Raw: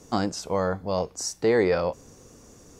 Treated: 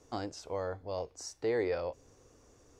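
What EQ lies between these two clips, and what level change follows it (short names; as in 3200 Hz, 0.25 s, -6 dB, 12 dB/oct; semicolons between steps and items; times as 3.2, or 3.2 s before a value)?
bell 190 Hz -14 dB 0.56 oct; high shelf 7300 Hz -11.5 dB; dynamic EQ 1200 Hz, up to -5 dB, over -43 dBFS, Q 1.4; -8.5 dB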